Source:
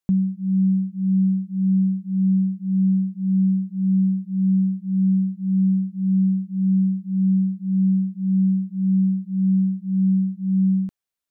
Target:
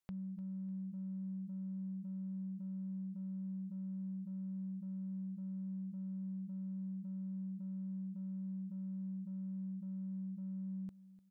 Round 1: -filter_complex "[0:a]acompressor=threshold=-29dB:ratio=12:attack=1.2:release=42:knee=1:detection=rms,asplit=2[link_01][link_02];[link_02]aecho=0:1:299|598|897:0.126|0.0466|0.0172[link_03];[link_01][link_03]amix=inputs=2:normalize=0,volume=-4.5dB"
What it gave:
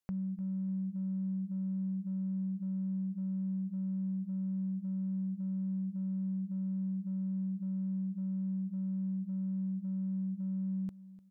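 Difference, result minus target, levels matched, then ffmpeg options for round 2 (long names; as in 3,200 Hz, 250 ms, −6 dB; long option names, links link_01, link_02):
downward compressor: peak gain reduction −7.5 dB
-filter_complex "[0:a]acompressor=threshold=-37dB:ratio=12:attack=1.2:release=42:knee=1:detection=rms,asplit=2[link_01][link_02];[link_02]aecho=0:1:299|598|897:0.126|0.0466|0.0172[link_03];[link_01][link_03]amix=inputs=2:normalize=0,volume=-4.5dB"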